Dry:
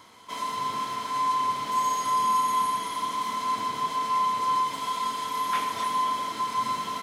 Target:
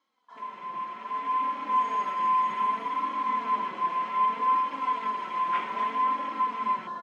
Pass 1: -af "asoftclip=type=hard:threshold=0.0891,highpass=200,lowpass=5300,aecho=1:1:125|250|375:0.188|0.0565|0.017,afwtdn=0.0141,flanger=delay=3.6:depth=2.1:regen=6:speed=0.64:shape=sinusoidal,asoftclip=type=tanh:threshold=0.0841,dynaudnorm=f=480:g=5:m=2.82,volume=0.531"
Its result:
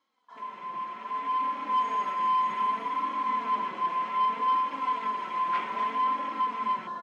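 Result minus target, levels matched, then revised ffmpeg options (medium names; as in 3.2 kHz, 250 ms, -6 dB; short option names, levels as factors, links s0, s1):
saturation: distortion +18 dB
-af "asoftclip=type=hard:threshold=0.0891,highpass=200,lowpass=5300,aecho=1:1:125|250|375:0.188|0.0565|0.017,afwtdn=0.0141,flanger=delay=3.6:depth=2.1:regen=6:speed=0.64:shape=sinusoidal,asoftclip=type=tanh:threshold=0.266,dynaudnorm=f=480:g=5:m=2.82,volume=0.531"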